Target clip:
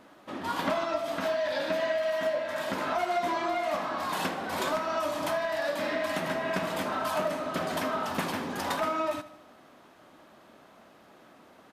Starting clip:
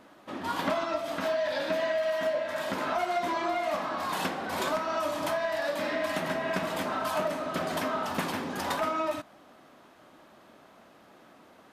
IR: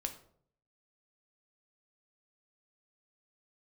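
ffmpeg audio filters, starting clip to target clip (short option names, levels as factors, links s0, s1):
-af "aecho=1:1:76|152|228|304|380:0.141|0.0791|0.0443|0.0248|0.0139"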